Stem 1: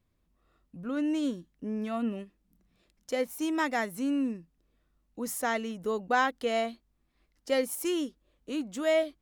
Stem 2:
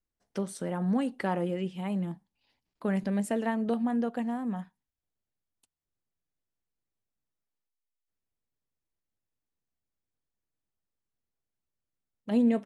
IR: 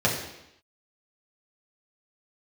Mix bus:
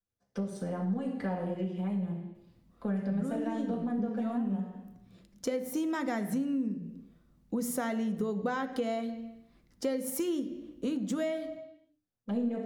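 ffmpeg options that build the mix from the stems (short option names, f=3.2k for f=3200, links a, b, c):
-filter_complex "[0:a]equalizer=f=160:w=1:g=14.5,bandreject=f=60:t=h:w=6,bandreject=f=120:t=h:w=6,bandreject=f=180:t=h:w=6,bandreject=f=240:t=h:w=6,bandreject=f=300:t=h:w=6,acompressor=threshold=-27dB:ratio=6,adelay=2350,volume=3dB,asplit=2[a][b];[b]volume=-20.5dB[c];[1:a]aeval=exprs='if(lt(val(0),0),0.708*val(0),val(0))':c=same,volume=-11.5dB,asplit=3[d][e][f];[e]volume=-4.5dB[g];[f]apad=whole_len=510121[h];[a][h]sidechaincompress=threshold=-43dB:ratio=8:attack=16:release=1210[i];[2:a]atrim=start_sample=2205[j];[c][g]amix=inputs=2:normalize=0[k];[k][j]afir=irnorm=-1:irlink=0[l];[i][d][l]amix=inputs=3:normalize=0,acompressor=threshold=-32dB:ratio=2.5"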